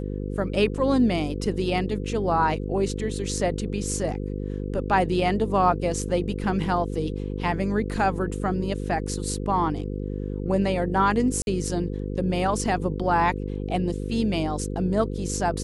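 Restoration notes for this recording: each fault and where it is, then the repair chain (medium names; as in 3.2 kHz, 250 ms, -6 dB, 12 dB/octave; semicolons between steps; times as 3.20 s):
buzz 50 Hz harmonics 10 -30 dBFS
11.42–11.47 s: dropout 51 ms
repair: de-hum 50 Hz, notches 10; interpolate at 11.42 s, 51 ms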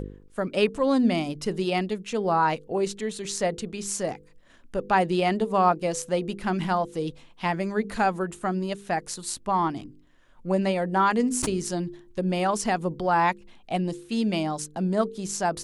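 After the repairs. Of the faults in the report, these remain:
nothing left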